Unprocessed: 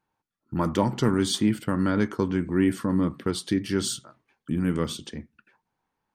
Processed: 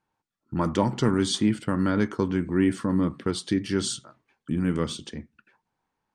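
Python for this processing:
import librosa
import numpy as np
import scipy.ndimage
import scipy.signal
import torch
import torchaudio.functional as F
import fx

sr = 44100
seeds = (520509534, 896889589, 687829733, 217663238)

y = scipy.signal.sosfilt(scipy.signal.butter(4, 9500.0, 'lowpass', fs=sr, output='sos'), x)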